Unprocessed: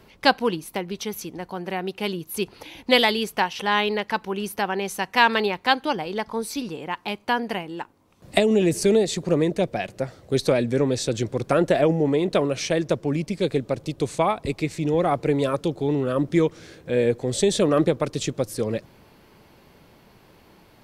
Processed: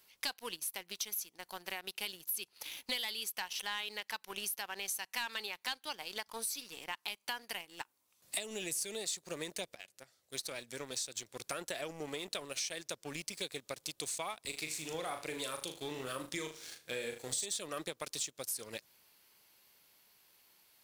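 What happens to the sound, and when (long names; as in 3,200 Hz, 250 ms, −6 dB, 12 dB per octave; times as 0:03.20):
0:09.75–0:13.71: fade in equal-power, from −14 dB
0:14.42–0:17.46: flutter between parallel walls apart 6.6 metres, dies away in 0.37 s
whole clip: first-order pre-emphasis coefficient 0.97; leveller curve on the samples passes 2; downward compressor 5 to 1, threshold −39 dBFS; level +2 dB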